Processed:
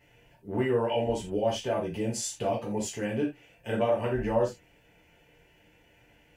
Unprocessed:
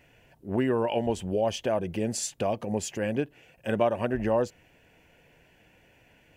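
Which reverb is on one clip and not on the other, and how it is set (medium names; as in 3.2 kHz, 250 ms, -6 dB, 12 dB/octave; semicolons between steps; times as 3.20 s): gated-style reverb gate 110 ms falling, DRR -5 dB; trim -7.5 dB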